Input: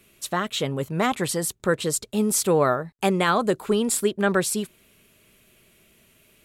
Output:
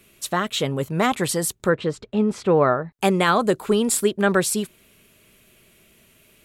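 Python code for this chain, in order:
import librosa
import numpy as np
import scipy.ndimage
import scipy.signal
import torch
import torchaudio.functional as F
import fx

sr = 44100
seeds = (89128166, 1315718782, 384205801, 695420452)

y = fx.lowpass(x, sr, hz=2400.0, slope=12, at=(1.68, 2.91), fade=0.02)
y = y * 10.0 ** (2.5 / 20.0)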